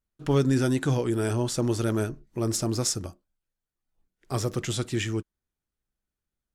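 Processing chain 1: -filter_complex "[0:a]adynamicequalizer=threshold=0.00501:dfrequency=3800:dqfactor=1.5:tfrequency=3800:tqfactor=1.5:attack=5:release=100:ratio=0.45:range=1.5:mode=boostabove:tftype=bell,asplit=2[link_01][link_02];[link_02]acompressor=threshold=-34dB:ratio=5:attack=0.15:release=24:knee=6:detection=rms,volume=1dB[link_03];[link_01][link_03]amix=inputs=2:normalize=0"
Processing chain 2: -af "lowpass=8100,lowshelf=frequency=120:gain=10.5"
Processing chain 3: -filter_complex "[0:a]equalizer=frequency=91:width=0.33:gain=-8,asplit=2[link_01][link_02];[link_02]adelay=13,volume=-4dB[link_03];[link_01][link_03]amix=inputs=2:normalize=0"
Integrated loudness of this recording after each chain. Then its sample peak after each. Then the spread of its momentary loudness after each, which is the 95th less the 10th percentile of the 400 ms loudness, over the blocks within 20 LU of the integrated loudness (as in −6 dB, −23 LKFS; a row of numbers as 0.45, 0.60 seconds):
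−25.0, −24.5, −30.0 LKFS; −10.5, −9.0, −13.0 dBFS; 8, 9, 8 LU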